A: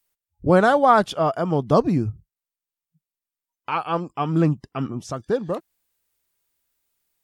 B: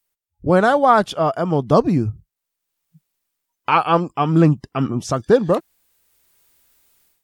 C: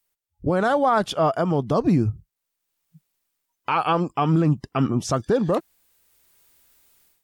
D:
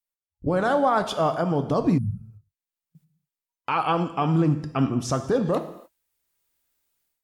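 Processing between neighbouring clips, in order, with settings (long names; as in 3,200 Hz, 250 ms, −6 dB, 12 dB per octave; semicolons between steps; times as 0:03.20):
automatic gain control gain up to 16 dB; level −1 dB
brickwall limiter −11 dBFS, peak gain reduction 9 dB
noise gate −56 dBFS, range −13 dB; reverb whose tail is shaped and stops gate 310 ms falling, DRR 8 dB; healed spectral selection 0:02.00–0:02.31, 220–8,900 Hz after; level −2.5 dB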